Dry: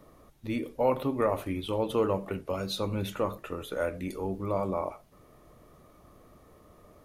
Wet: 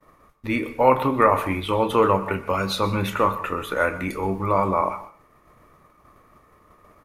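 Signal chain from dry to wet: doubler 31 ms -12.5 dB; expander -48 dBFS; band shelf 1500 Hz +8.5 dB; reverb RT60 0.45 s, pre-delay 0.119 s, DRR 15 dB; gain +6.5 dB

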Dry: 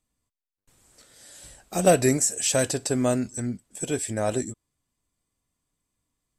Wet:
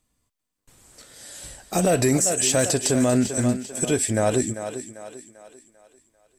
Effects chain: in parallel at -8 dB: hard clip -19 dBFS, distortion -10 dB; on the sum: thinning echo 0.394 s, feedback 44%, high-pass 210 Hz, level -11.5 dB; limiter -15.5 dBFS, peak gain reduction 10 dB; gain +4 dB

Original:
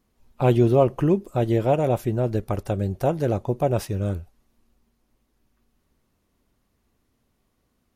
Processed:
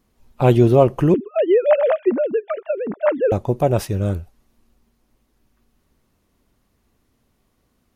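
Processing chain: 1.14–3.32 sine-wave speech; gain +4.5 dB

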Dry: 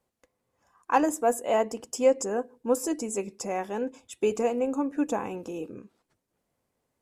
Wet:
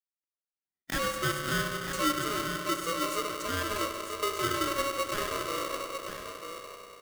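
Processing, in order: block floating point 3-bit; gate -46 dBFS, range -36 dB; harmonic-percussive split harmonic +8 dB; compressor 2:1, threshold -24 dBFS, peak gain reduction 9.5 dB; on a send: echo 0.946 s -7.5 dB; on the sum: spring tank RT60 3.6 s, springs 32/48 ms, chirp 50 ms, DRR 4 dB; polarity switched at an audio rate 830 Hz; gain -8 dB

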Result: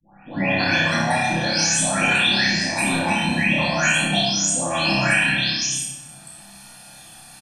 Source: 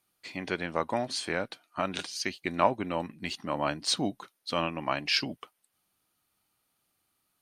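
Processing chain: spectral delay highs late, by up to 0.626 s; LPF 9000 Hz 24 dB/oct; high shelf 6800 Hz +11 dB; negative-ratio compressor -39 dBFS, ratio -1; low shelf 130 Hz -6.5 dB; comb 1.2 ms, depth 74%; flutter echo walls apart 5.2 m, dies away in 0.52 s; shoebox room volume 410 m³, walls mixed, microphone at 2.3 m; three-band squash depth 40%; gain +8 dB

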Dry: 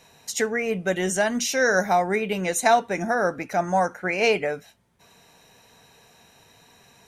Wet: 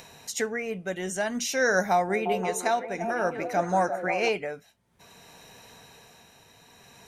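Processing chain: upward compressor, threshold -39 dBFS; tremolo 0.54 Hz, depth 46%; 1.91–4.29 delay with a stepping band-pass 0.173 s, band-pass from 360 Hz, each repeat 0.7 oct, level -3 dB; gain -2.5 dB

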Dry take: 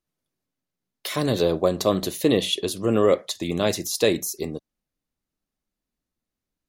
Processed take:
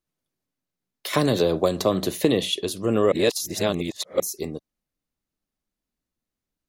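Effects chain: 1.13–2.43 three-band squash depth 100%; 3.12–4.2 reverse; gain -1 dB

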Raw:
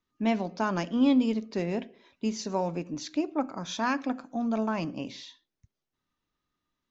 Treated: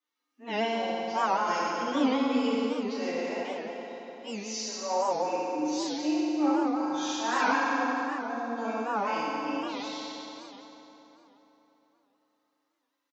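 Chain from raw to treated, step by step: HPF 530 Hz 12 dB/oct; comb 3.7 ms, depth 37%; time stretch by phase-locked vocoder 1.9×; FDN reverb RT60 3.9 s, high-frequency decay 0.65×, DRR -10 dB; record warp 78 rpm, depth 160 cents; gain -5.5 dB

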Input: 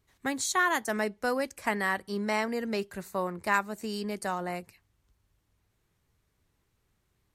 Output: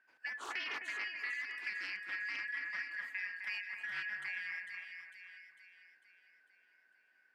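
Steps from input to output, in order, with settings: four-band scrambler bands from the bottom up 3142; three-band isolator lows -20 dB, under 200 Hz, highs -20 dB, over 2900 Hz; compressor 3:1, threshold -44 dBFS, peak gain reduction 13.5 dB; on a send: split-band echo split 2200 Hz, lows 0.259 s, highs 0.45 s, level -4.5 dB; on the sum: Doppler distortion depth 0.19 ms; gain +1.5 dB

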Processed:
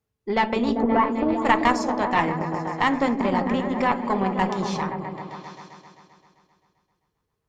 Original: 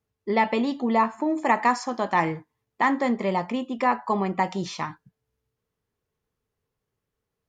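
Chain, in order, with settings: 0.82–1.45 formant sharpening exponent 1.5; repeats that get brighter 0.131 s, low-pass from 200 Hz, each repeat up 1 oct, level 0 dB; added harmonics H 2 -7 dB, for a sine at -7 dBFS

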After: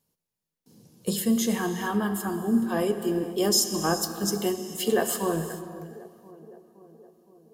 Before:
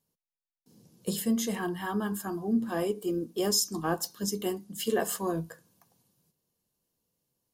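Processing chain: on a send: tape echo 0.516 s, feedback 72%, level -16 dB, low-pass 1100 Hz; on the sum: non-linear reverb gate 0.47 s flat, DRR 8.5 dB; gain +4 dB

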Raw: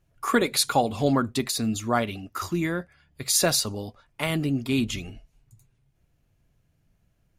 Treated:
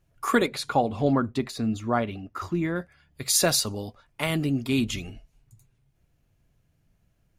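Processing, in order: 0.46–2.76 LPF 1600 Hz 6 dB/oct

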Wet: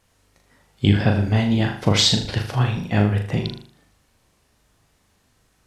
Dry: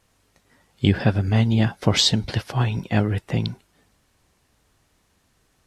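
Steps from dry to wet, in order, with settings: flutter echo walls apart 6.7 m, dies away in 0.47 s

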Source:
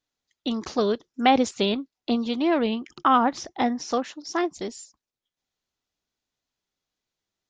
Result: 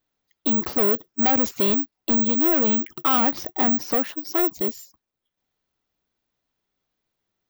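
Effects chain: high shelf 3700 Hz -11.5 dB; in parallel at -3 dB: limiter -16.5 dBFS, peak gain reduction 7.5 dB; on the sum: soft clip -21.5 dBFS, distortion -8 dB; careless resampling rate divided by 2×, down filtered, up zero stuff; gain +2 dB

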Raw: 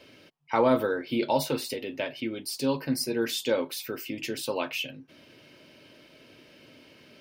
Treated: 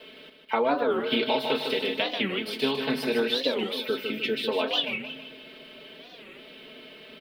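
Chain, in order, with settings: 0.91–3.22 spectral contrast lowered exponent 0.65; HPF 100 Hz 12 dB/oct; bell 470 Hz +5.5 dB 1.3 oct; notches 50/100/150/200/250/300 Hz; bit-crush 9-bit; resonant high shelf 4800 Hz -12 dB, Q 3; compressor 6:1, threshold -24 dBFS, peak gain reduction 10 dB; comb 4.6 ms, depth 75%; feedback echo 0.153 s, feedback 45%, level -6.5 dB; record warp 45 rpm, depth 250 cents

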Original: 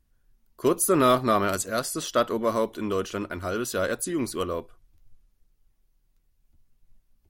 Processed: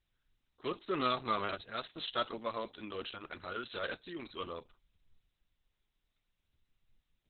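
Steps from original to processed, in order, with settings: pre-emphasis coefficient 0.9; gain +5.5 dB; Opus 6 kbps 48000 Hz

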